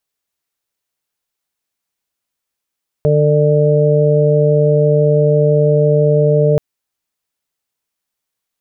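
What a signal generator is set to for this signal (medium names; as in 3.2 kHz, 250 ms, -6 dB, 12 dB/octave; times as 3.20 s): steady additive tone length 3.53 s, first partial 149 Hz, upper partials -16.5/-1/-3 dB, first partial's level -12 dB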